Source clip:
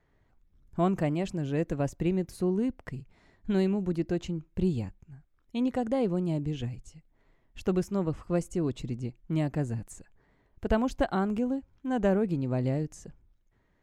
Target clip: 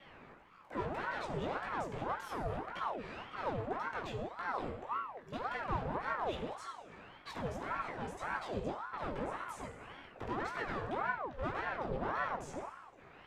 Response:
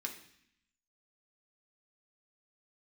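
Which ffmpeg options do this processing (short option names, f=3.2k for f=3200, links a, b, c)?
-filter_complex "[0:a]acompressor=threshold=-41dB:ratio=6,afreqshift=-29,asplit=2[a][b];[b]highpass=f=720:p=1,volume=29dB,asoftclip=type=tanh:threshold=-31dB[c];[a][c]amix=inputs=2:normalize=0,lowpass=f=1k:p=1,volume=-6dB,flanger=delay=17:depth=3.3:speed=0.61[d];[1:a]atrim=start_sample=2205,asetrate=24696,aresample=44100[e];[d][e]afir=irnorm=-1:irlink=0,asetrate=45938,aresample=44100,aeval=exprs='val(0)*sin(2*PI*760*n/s+760*0.65/1.8*sin(2*PI*1.8*n/s))':c=same,volume=4dB"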